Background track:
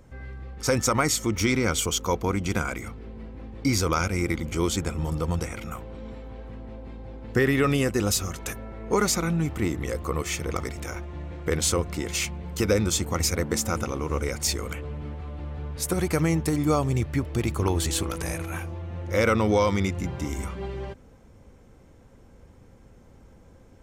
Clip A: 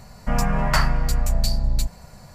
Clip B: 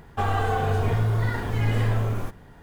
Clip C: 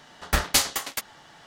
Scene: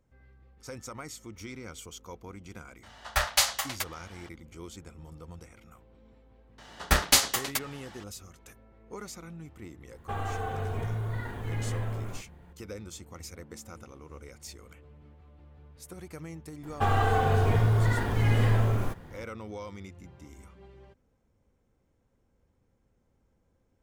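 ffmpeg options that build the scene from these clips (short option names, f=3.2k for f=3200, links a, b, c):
-filter_complex "[3:a]asplit=2[a][b];[2:a]asplit=2[c][d];[0:a]volume=-19dB[e];[a]firequalizer=gain_entry='entry(130,0);entry(220,-27);entry(590,6);entry(9000,3)':delay=0.05:min_phase=1[f];[c]equalizer=f=5.1k:w=3.6:g=-7.5[g];[f]atrim=end=1.46,asetpts=PTS-STARTPTS,volume=-7dB,afade=t=in:d=0.004:c=hsin,afade=t=out:st=1.456:d=0.004:c=hsin,adelay=2830[h];[b]atrim=end=1.46,asetpts=PTS-STARTPTS,afade=t=in:d=0.004:c=hsin,afade=t=out:st=1.456:d=0.004:c=hsin,adelay=290178S[i];[g]atrim=end=2.62,asetpts=PTS-STARTPTS,volume=-9.5dB,afade=t=in:d=0.004:c=hsin,afade=t=out:st=2.616:d=0.004:c=hsin,adelay=9910[j];[d]atrim=end=2.62,asetpts=PTS-STARTPTS,volume=-0.5dB,afade=t=in:d=0.004:c=hsin,afade=t=out:st=2.616:d=0.004:c=hsin,adelay=16630[k];[e][h][i][j][k]amix=inputs=5:normalize=0"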